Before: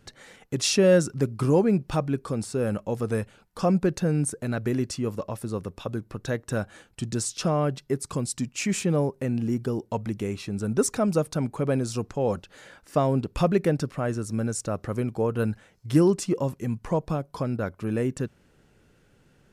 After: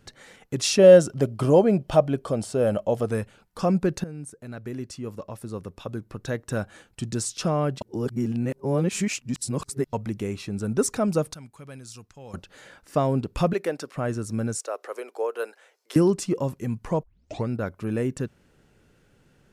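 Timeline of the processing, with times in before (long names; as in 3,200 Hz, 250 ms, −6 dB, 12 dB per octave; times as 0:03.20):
0:00.79–0:03.06: hollow resonant body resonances 630/3,100 Hz, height 13 dB, ringing for 20 ms
0:04.04–0:06.57: fade in, from −15 dB
0:07.81–0:09.93: reverse
0:11.34–0:12.34: guitar amp tone stack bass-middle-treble 5-5-5
0:13.53–0:13.96: high-pass filter 430 Hz
0:14.57–0:15.96: Butterworth high-pass 410 Hz
0:17.03: tape start 0.46 s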